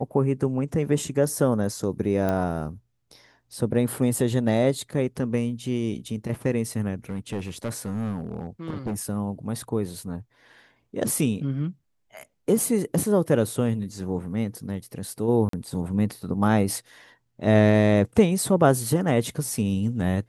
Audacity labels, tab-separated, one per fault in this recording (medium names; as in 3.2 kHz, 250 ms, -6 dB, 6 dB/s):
2.290000	2.290000	pop -14 dBFS
7.090000	8.990000	clipped -24 dBFS
15.490000	15.530000	dropout 43 ms